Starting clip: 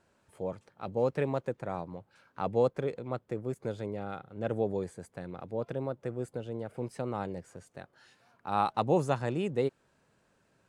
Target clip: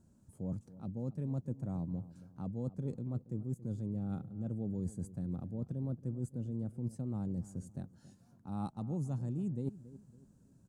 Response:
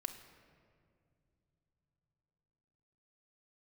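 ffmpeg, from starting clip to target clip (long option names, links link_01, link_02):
-filter_complex "[0:a]firequalizer=gain_entry='entry(230,0);entry(420,-17);entry(2100,-30);entry(6700,-9)':delay=0.05:min_phase=1,areverse,acompressor=threshold=-44dB:ratio=10,areverse,asplit=2[link_01][link_02];[link_02]adelay=277,lowpass=frequency=1200:poles=1,volume=-16dB,asplit=2[link_03][link_04];[link_04]adelay=277,lowpass=frequency=1200:poles=1,volume=0.38,asplit=2[link_05][link_06];[link_06]adelay=277,lowpass=frequency=1200:poles=1,volume=0.38[link_07];[link_01][link_03][link_05][link_07]amix=inputs=4:normalize=0,volume=10dB"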